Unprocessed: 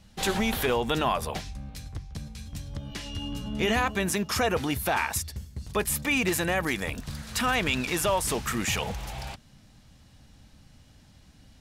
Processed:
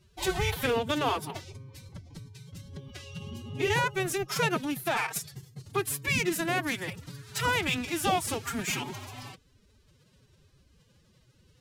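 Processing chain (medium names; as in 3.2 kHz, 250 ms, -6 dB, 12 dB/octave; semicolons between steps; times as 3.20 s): Chebyshev shaper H 7 -22 dB, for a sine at -11.5 dBFS; formant-preserving pitch shift +11.5 st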